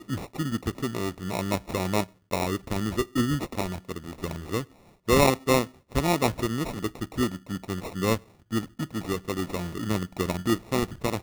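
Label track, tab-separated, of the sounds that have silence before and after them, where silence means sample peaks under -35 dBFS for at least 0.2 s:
2.310000	4.640000	sound
5.080000	5.670000	sound
5.920000	8.180000	sound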